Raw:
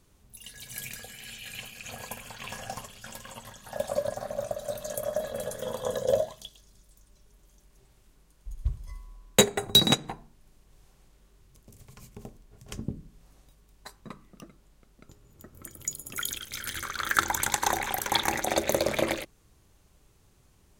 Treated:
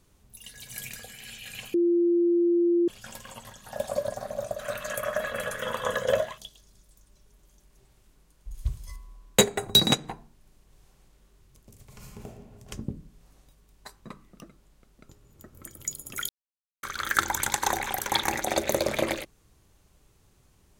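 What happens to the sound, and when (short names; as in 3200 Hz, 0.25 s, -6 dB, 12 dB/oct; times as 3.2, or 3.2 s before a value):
1.74–2.88 bleep 345 Hz -19 dBFS
4.59–6.38 band shelf 1800 Hz +14.5 dB
8.54–8.96 high shelf 2500 Hz +10.5 dB
11.84–12.25 reverb throw, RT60 1.5 s, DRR -2.5 dB
16.29–16.83 mute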